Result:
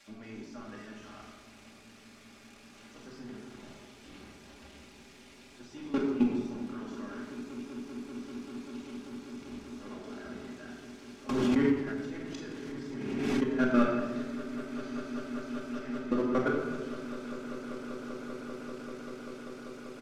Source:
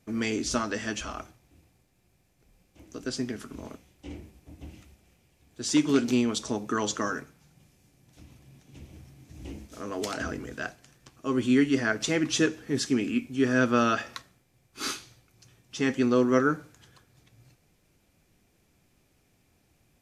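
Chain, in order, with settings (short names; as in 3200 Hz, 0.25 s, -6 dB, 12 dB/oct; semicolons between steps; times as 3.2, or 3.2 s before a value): switching spikes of -22 dBFS; low shelf 120 Hz -4.5 dB; notches 50/100/150/200/250/300/350/400 Hz; comb 5 ms, depth 45%; level quantiser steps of 22 dB; sample leveller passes 2; tape spacing loss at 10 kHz 27 dB; swelling echo 0.195 s, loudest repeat 8, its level -18 dB; reverb RT60 1.3 s, pre-delay 4 ms, DRR -2.5 dB; 11.29–13.44 backwards sustainer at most 27 dB/s; gain -8 dB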